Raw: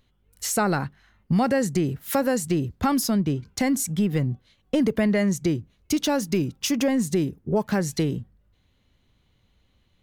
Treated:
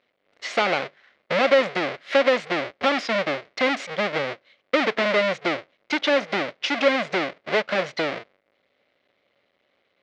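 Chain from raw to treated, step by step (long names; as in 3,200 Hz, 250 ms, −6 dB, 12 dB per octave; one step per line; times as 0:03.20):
each half-wave held at its own peak
loudspeaker in its box 480–4,200 Hz, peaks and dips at 560 Hz +7 dB, 910 Hz −6 dB, 2,100 Hz +7 dB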